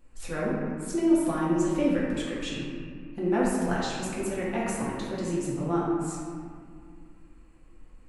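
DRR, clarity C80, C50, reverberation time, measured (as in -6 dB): -7.5 dB, 0.5 dB, -1.5 dB, 2.1 s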